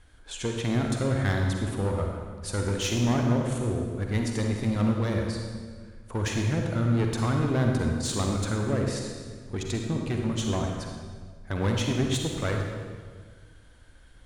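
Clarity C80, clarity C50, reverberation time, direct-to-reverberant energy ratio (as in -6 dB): 3.5 dB, 2.0 dB, 1.7 s, 1.5 dB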